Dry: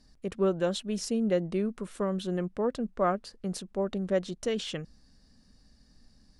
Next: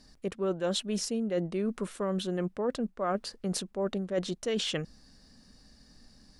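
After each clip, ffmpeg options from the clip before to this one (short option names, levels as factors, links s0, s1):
-af "lowshelf=f=170:g=-6.5,areverse,acompressor=threshold=0.02:ratio=6,areverse,volume=2.11"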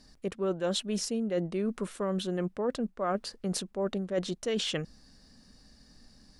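-af anull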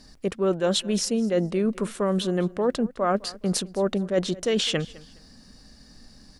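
-af "aecho=1:1:208|416:0.0891|0.0232,volume=2.24"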